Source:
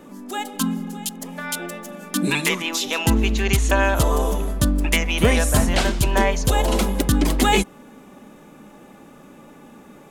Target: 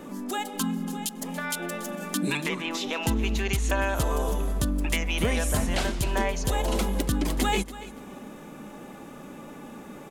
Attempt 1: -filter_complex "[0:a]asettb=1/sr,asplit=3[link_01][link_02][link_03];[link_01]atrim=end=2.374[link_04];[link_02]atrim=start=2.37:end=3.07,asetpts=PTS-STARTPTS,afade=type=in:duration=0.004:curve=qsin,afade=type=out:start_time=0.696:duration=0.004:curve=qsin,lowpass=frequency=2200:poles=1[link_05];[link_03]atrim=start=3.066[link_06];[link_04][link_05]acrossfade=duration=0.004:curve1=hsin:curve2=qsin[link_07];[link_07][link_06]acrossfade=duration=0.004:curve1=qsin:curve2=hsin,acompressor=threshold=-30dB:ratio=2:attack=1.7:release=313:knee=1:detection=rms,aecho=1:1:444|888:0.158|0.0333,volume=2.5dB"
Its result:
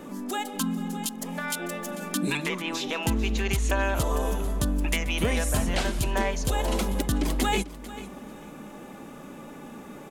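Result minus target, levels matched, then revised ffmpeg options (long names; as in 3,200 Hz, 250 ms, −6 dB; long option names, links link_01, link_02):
echo 160 ms late
-filter_complex "[0:a]asettb=1/sr,asplit=3[link_01][link_02][link_03];[link_01]atrim=end=2.374[link_04];[link_02]atrim=start=2.37:end=3.07,asetpts=PTS-STARTPTS,afade=type=in:duration=0.004:curve=qsin,afade=type=out:start_time=0.696:duration=0.004:curve=qsin,lowpass=frequency=2200:poles=1[link_05];[link_03]atrim=start=3.066[link_06];[link_04][link_05]acrossfade=duration=0.004:curve1=hsin:curve2=qsin[link_07];[link_07][link_06]acrossfade=duration=0.004:curve1=qsin:curve2=hsin,acompressor=threshold=-30dB:ratio=2:attack=1.7:release=313:knee=1:detection=rms,aecho=1:1:284|568:0.158|0.0333,volume=2.5dB"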